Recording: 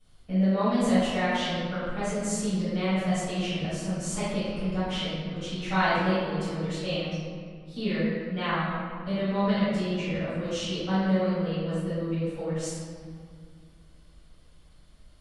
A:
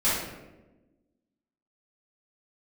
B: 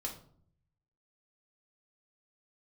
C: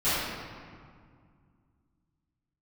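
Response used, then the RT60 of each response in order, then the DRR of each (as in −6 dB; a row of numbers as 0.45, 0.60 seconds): C; 1.1, 0.55, 2.0 seconds; −12.0, −1.5, −17.0 decibels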